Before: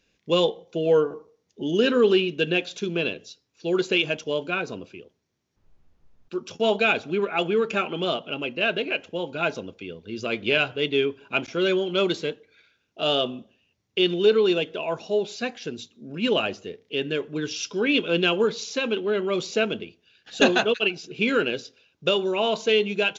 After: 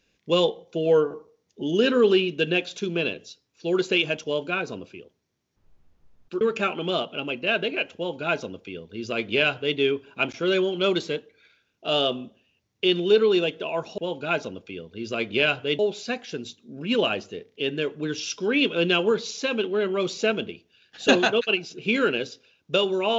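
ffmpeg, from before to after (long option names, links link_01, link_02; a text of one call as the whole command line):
ffmpeg -i in.wav -filter_complex "[0:a]asplit=4[link_01][link_02][link_03][link_04];[link_01]atrim=end=6.412[link_05];[link_02]atrim=start=7.548:end=15.122[link_06];[link_03]atrim=start=9.098:end=10.912[link_07];[link_04]atrim=start=15.118[link_08];[link_05][link_06]acrossfade=duration=0.004:curve1=hsin:curve2=hsin[link_09];[link_09][link_07]acrossfade=duration=0.004:curve1=hsin:curve2=hsin[link_10];[link_10][link_08]acrossfade=duration=0.004:curve1=hsin:curve2=hsin" out.wav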